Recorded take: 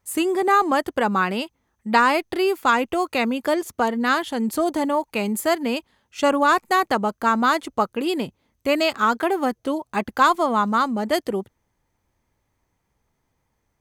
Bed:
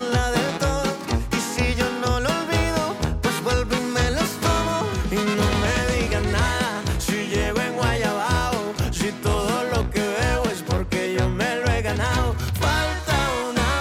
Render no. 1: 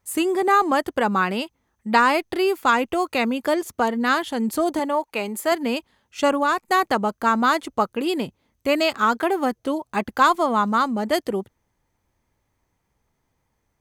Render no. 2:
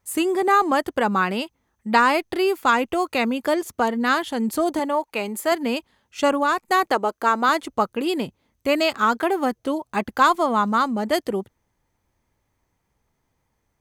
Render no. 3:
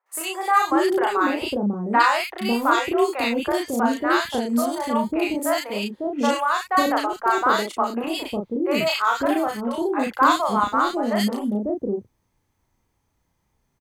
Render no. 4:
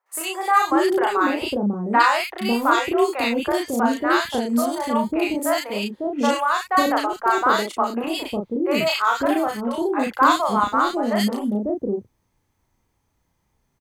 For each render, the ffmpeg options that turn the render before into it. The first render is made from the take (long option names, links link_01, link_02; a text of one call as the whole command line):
ffmpeg -i in.wav -filter_complex "[0:a]asettb=1/sr,asplit=3[link_01][link_02][link_03];[link_01]atrim=end=4.794[link_04];[link_02]atrim=start=4.79:end=5.52,asetpts=PTS-STARTPTS,afade=type=in:duration=0.004:curve=qsin,afade=type=out:start_time=0.726:duration=0.004:curve=qsin,bass=frequency=250:gain=-11,treble=frequency=4000:gain=-3[link_05];[link_03]atrim=start=5.516[link_06];[link_04][link_05]acrossfade=duration=0.004:curve1=hsin:curve2=qsin[link_07];[link_07][link_06]acrossfade=duration=0.004:curve1=qsin:curve2=hsin,asplit=2[link_08][link_09];[link_08]atrim=end=6.68,asetpts=PTS-STARTPTS,afade=type=out:start_time=6.23:duration=0.45:silence=0.421697[link_10];[link_09]atrim=start=6.68,asetpts=PTS-STARTPTS,afade=type=in:duration=0.004:curve=hsin:silence=0.421697[link_11];[link_10][link_11]concat=n=2:v=0:a=1" out.wav
ffmpeg -i in.wav -filter_complex "[0:a]asettb=1/sr,asplit=3[link_01][link_02][link_03];[link_01]atrim=end=6.874[link_04];[link_02]atrim=start=6.87:end=7.49,asetpts=PTS-STARTPTS,afade=type=in:duration=0.004:curve=qsin,afade=type=out:start_time=0.616:duration=0.004:curve=qsin,lowshelf=frequency=250:width_type=q:width=1.5:gain=-8.5[link_05];[link_03]atrim=start=7.486[link_06];[link_04][link_05]acrossfade=duration=0.004:curve1=hsin:curve2=qsin[link_07];[link_07][link_06]acrossfade=duration=0.004:curve1=qsin:curve2=hsin" out.wav
ffmpeg -i in.wav -filter_complex "[0:a]asplit=2[link_01][link_02];[link_02]adelay=34,volume=-3dB[link_03];[link_01][link_03]amix=inputs=2:normalize=0,acrossover=split=560|1800[link_04][link_05][link_06];[link_06]adelay=60[link_07];[link_04]adelay=550[link_08];[link_08][link_05][link_07]amix=inputs=3:normalize=0" out.wav
ffmpeg -i in.wav -af "volume=1dB" out.wav